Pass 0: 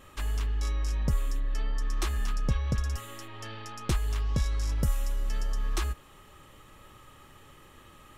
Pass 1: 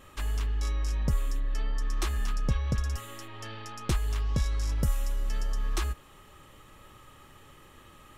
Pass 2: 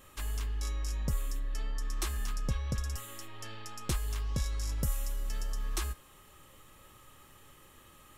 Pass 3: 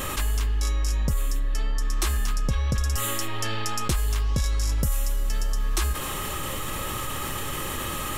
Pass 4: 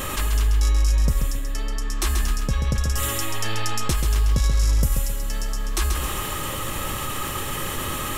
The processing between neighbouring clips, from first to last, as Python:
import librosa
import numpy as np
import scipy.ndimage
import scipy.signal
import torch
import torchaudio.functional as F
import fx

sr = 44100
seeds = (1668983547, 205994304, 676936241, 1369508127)

y1 = x
y2 = fx.high_shelf(y1, sr, hz=6300.0, db=10.5)
y2 = fx.comb_fb(y2, sr, f0_hz=530.0, decay_s=0.48, harmonics='all', damping=0.0, mix_pct=60)
y2 = y2 * 10.0 ** (2.5 / 20.0)
y3 = fx.env_flatten(y2, sr, amount_pct=70)
y3 = y3 * 10.0 ** (5.5 / 20.0)
y4 = fx.echo_feedback(y3, sr, ms=134, feedback_pct=33, wet_db=-6.0)
y4 = y4 * 10.0 ** (1.5 / 20.0)